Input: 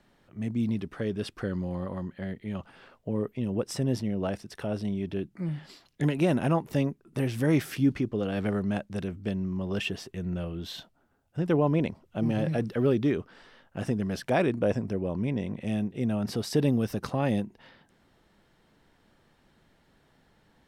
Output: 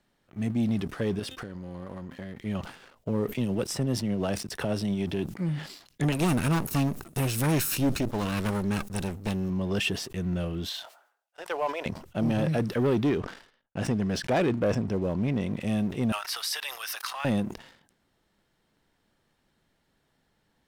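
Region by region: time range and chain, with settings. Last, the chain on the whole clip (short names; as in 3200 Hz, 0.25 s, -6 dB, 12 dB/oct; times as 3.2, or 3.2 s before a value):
1.19–2.39 HPF 43 Hz + de-hum 259.8 Hz, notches 14 + compressor 12:1, threshold -37 dBFS
3.32–5.3 tremolo 10 Hz, depth 31% + three-band squash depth 70%
6.12–9.5 minimum comb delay 0.75 ms + high shelf 6300 Hz +10 dB
10.69–11.86 HPF 610 Hz 24 dB/oct + high shelf 5700 Hz -6.5 dB
13.09–15.41 air absorption 59 m + gate -55 dBFS, range -56 dB
16.12–17.25 inverse Chebyshev high-pass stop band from 240 Hz, stop band 70 dB + bell 7400 Hz -6.5 dB 0.6 oct + fast leveller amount 50%
whole clip: high shelf 3800 Hz +6.5 dB; sample leveller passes 2; sustainer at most 110 dB/s; gain -4.5 dB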